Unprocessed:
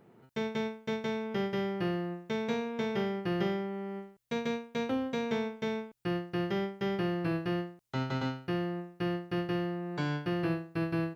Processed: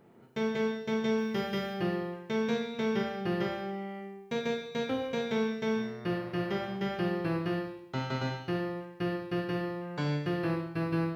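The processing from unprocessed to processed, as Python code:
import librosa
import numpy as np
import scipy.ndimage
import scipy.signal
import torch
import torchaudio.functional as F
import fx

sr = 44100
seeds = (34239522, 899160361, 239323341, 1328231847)

y = fx.high_shelf(x, sr, hz=5300.0, db=9.5, at=(1.18, 1.74))
y = fx.dmg_buzz(y, sr, base_hz=120.0, harmonics=19, level_db=-47.0, tilt_db=-5, odd_only=False, at=(5.76, 6.76), fade=0.02)
y = fx.rev_schroeder(y, sr, rt60_s=0.87, comb_ms=28, drr_db=3.0)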